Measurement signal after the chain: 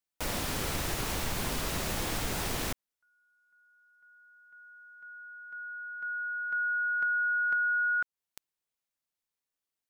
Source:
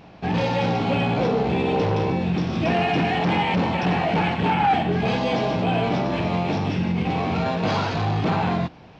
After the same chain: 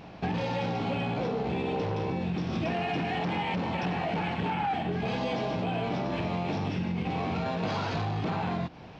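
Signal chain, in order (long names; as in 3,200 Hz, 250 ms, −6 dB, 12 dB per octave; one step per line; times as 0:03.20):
downward compressor 10 to 1, threshold −27 dBFS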